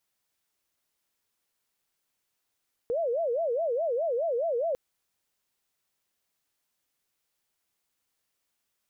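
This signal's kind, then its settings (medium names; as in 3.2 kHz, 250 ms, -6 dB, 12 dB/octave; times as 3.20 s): siren wail 462–679 Hz 4.8 per s sine -25 dBFS 1.85 s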